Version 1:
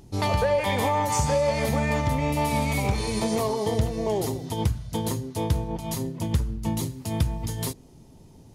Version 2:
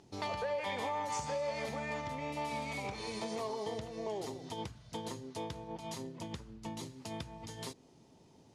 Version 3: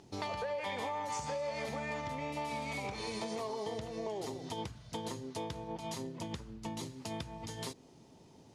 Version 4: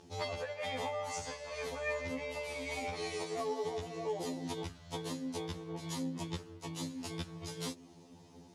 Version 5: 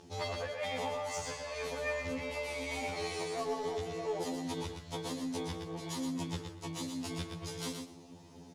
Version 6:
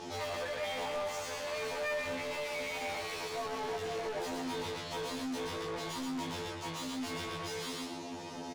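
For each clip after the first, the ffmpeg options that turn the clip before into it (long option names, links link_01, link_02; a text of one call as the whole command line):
ffmpeg -i in.wav -af "lowpass=6400,acompressor=threshold=-32dB:ratio=2,highpass=frequency=390:poles=1,volume=-4.5dB" out.wav
ffmpeg -i in.wav -af "acompressor=threshold=-39dB:ratio=2.5,volume=3dB" out.wav
ffmpeg -i in.wav -af "afftfilt=real='re*2*eq(mod(b,4),0)':imag='im*2*eq(mod(b,4),0)':win_size=2048:overlap=0.75,volume=4dB" out.wav
ffmpeg -i in.wav -filter_complex "[0:a]asplit=2[link_01][link_02];[link_02]asoftclip=type=hard:threshold=-39.5dB,volume=-4.5dB[link_03];[link_01][link_03]amix=inputs=2:normalize=0,aecho=1:1:119|238|357:0.501|0.0852|0.0145,volume=-2dB" out.wav
ffmpeg -i in.wav -filter_complex "[0:a]asplit=2[link_01][link_02];[link_02]highpass=frequency=720:poles=1,volume=33dB,asoftclip=type=tanh:threshold=-24.5dB[link_03];[link_01][link_03]amix=inputs=2:normalize=0,lowpass=frequency=3100:poles=1,volume=-6dB,asplit=2[link_04][link_05];[link_05]adelay=20,volume=-3dB[link_06];[link_04][link_06]amix=inputs=2:normalize=0,volume=-8dB" out.wav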